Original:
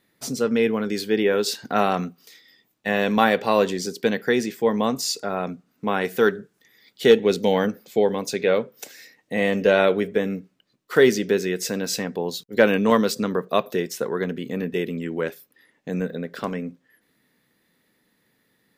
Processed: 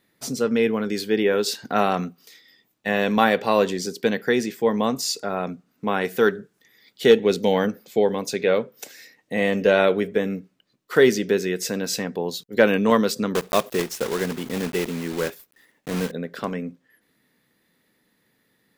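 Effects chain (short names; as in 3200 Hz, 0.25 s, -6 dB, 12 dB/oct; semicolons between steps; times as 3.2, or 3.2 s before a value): 13.35–16.12 block floating point 3-bit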